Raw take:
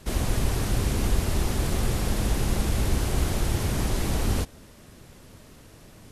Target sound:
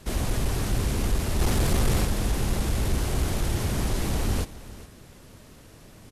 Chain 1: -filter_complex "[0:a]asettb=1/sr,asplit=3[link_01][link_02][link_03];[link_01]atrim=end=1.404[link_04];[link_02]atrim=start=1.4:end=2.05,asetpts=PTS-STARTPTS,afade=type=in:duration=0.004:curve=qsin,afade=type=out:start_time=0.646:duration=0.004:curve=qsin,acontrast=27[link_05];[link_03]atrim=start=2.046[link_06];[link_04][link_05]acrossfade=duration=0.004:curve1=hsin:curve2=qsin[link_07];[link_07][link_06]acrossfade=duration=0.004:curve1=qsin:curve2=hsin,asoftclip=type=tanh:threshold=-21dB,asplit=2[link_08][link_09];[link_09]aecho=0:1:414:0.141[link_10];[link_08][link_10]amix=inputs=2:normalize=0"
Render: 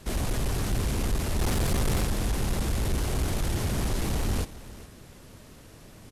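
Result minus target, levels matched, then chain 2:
soft clipping: distortion +7 dB
-filter_complex "[0:a]asettb=1/sr,asplit=3[link_01][link_02][link_03];[link_01]atrim=end=1.404[link_04];[link_02]atrim=start=1.4:end=2.05,asetpts=PTS-STARTPTS,afade=type=in:duration=0.004:curve=qsin,afade=type=out:start_time=0.646:duration=0.004:curve=qsin,acontrast=27[link_05];[link_03]atrim=start=2.046[link_06];[link_04][link_05]acrossfade=duration=0.004:curve1=hsin:curve2=qsin[link_07];[link_07][link_06]acrossfade=duration=0.004:curve1=qsin:curve2=hsin,asoftclip=type=tanh:threshold=-15dB,asplit=2[link_08][link_09];[link_09]aecho=0:1:414:0.141[link_10];[link_08][link_10]amix=inputs=2:normalize=0"

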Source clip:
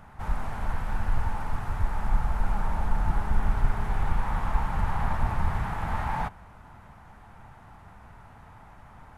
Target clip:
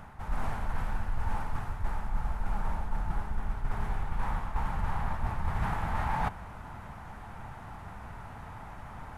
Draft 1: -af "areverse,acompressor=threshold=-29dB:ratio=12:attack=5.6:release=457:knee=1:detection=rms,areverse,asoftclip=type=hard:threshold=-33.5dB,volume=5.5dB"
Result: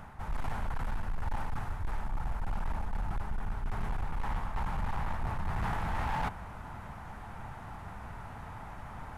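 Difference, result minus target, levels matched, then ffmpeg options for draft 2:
hard clipping: distortion +37 dB
-af "areverse,acompressor=threshold=-29dB:ratio=12:attack=5.6:release=457:knee=1:detection=rms,areverse,asoftclip=type=hard:threshold=-24.5dB,volume=5.5dB"

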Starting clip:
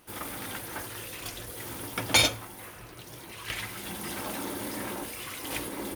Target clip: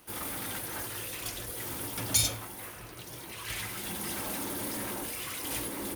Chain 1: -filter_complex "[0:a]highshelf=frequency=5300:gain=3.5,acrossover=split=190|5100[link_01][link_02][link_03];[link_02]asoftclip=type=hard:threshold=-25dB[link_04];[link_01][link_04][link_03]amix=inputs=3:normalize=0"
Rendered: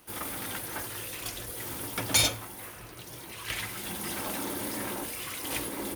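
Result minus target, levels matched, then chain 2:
hard clipping: distortion −6 dB
-filter_complex "[0:a]highshelf=frequency=5300:gain=3.5,acrossover=split=190|5100[link_01][link_02][link_03];[link_02]asoftclip=type=hard:threshold=-36.5dB[link_04];[link_01][link_04][link_03]amix=inputs=3:normalize=0"

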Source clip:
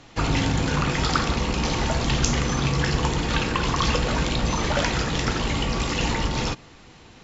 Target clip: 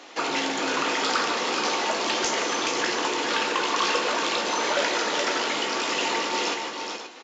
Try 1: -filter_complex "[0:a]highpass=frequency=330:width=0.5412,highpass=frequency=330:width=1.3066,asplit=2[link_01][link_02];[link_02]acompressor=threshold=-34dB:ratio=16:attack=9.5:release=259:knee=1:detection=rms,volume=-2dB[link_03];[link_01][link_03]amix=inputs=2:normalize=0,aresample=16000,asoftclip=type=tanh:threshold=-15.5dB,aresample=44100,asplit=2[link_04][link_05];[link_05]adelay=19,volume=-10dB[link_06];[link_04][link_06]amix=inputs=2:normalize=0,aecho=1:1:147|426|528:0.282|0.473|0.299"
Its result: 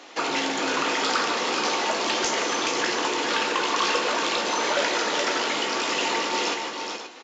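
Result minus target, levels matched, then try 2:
downward compressor: peak gain reduction −5.5 dB
-filter_complex "[0:a]highpass=frequency=330:width=0.5412,highpass=frequency=330:width=1.3066,asplit=2[link_01][link_02];[link_02]acompressor=threshold=-40dB:ratio=16:attack=9.5:release=259:knee=1:detection=rms,volume=-2dB[link_03];[link_01][link_03]amix=inputs=2:normalize=0,aresample=16000,asoftclip=type=tanh:threshold=-15.5dB,aresample=44100,asplit=2[link_04][link_05];[link_05]adelay=19,volume=-10dB[link_06];[link_04][link_06]amix=inputs=2:normalize=0,aecho=1:1:147|426|528:0.282|0.473|0.299"

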